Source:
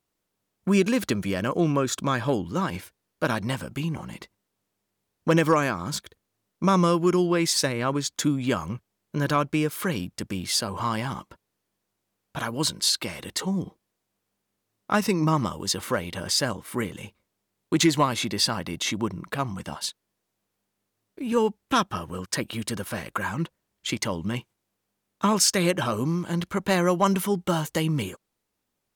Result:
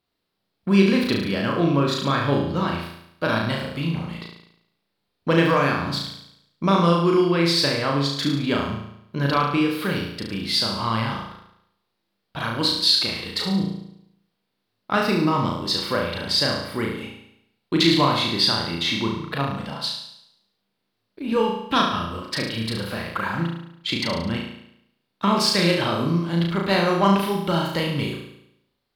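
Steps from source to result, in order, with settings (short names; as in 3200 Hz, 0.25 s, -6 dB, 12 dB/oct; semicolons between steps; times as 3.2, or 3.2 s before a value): resonant high shelf 5400 Hz -7.5 dB, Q 3; flutter echo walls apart 6.1 m, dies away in 0.76 s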